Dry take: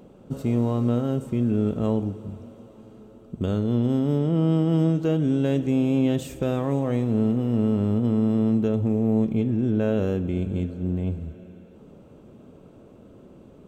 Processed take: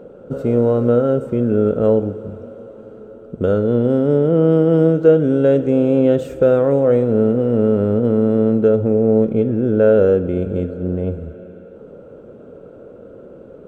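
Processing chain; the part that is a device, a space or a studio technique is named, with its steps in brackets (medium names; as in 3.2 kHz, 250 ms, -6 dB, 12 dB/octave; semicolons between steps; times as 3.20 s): inside a helmet (treble shelf 3.1 kHz -9 dB; small resonant body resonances 500/1400 Hz, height 15 dB, ringing for 20 ms); trim +2.5 dB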